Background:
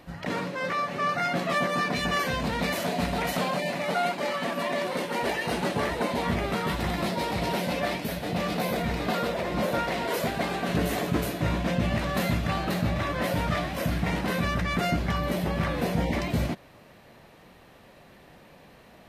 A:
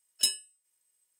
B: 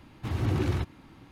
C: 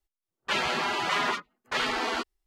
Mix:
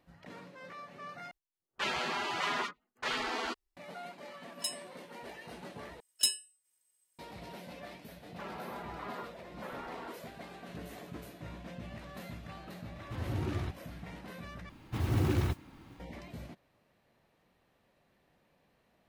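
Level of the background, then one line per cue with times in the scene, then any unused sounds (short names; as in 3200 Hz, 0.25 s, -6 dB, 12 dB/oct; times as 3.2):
background -19 dB
1.31 replace with C -6.5 dB
4.41 add A -10.5 dB
6 replace with A -1.5 dB + soft clip -11 dBFS
7.9 add C -13 dB + LPF 1200 Hz
12.87 add B -8 dB
14.69 replace with B -2 dB + modulation noise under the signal 25 dB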